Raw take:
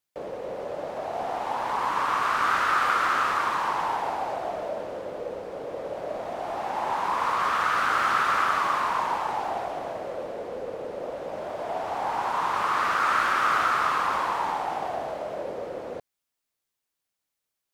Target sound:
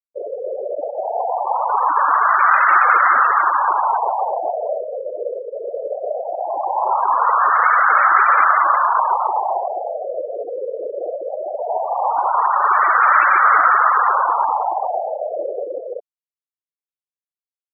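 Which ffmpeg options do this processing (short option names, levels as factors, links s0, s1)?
-af "acontrast=86,adynamicequalizer=threshold=0.00251:dfrequency=5400:dqfactor=5.8:tfrequency=5400:tqfactor=5.8:attack=5:release=100:ratio=0.375:range=3.5:mode=boostabove:tftype=bell,afftfilt=real='re*gte(hypot(re,im),0.178)':imag='im*gte(hypot(re,im),0.178)':win_size=1024:overlap=0.75,highshelf=f=2700:g=8,volume=1.33"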